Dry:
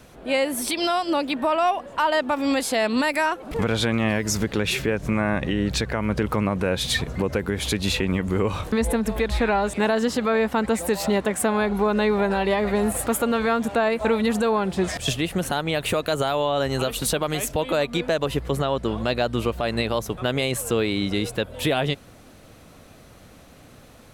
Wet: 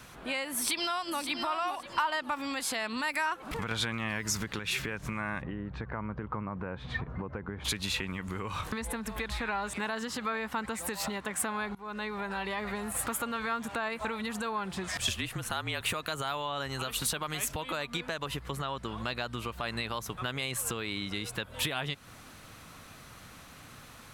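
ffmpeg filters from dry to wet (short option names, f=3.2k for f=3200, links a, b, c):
-filter_complex "[0:a]asplit=2[a][b];[b]afade=t=in:st=0.55:d=0.01,afade=t=out:st=1.19:d=0.01,aecho=0:1:560|1120|1680:0.473151|0.0946303|0.0189261[c];[a][c]amix=inputs=2:normalize=0,asplit=3[d][e][f];[d]afade=t=out:st=5.41:d=0.02[g];[e]lowpass=1.1k,afade=t=in:st=5.41:d=0.02,afade=t=out:st=7.64:d=0.02[h];[f]afade=t=in:st=7.64:d=0.02[i];[g][h][i]amix=inputs=3:normalize=0,asettb=1/sr,asplit=3[j][k][l];[j]atrim=end=15.084[m];[k]atrim=start=15.08:end=15.81,asetpts=PTS-STARTPTS,afade=t=in:d=0.004:c=qsin,afade=t=out:st=0.726:d=0.004:c=qsin,afreqshift=-43[n];[l]atrim=start=15.806[o];[m][n]acrossfade=d=0.004:c1=hsin:c2=qsin[p];[p][o]acrossfade=d=0.004:c1=qsin:c2=hsin,asplit=4[q][r][s][t];[q]atrim=end=3.712[u];[r]atrim=start=3.708:end=4.592,asetpts=PTS-STARTPTS,volume=5.5dB[v];[s]atrim=start=4.588:end=11.75,asetpts=PTS-STARTPTS,afade=t=out:st=7.158:d=0.004:c=hsin:silence=0.0707946[w];[t]atrim=start=11.75,asetpts=PTS-STARTPTS,afade=t=in:d=1.11:silence=0.0707946[x];[u][v]acrossfade=d=0.004:c1=hsin:c2=hsin[y];[w][x]concat=n=2:v=0:a=1[z];[y][z]acrossfade=d=0.004:c1=hsin:c2=hsin,equalizer=f=130:w=1.1:g=3.5,acompressor=threshold=-28dB:ratio=6,lowshelf=f=800:t=q:w=1.5:g=-7.5,volume=1.5dB"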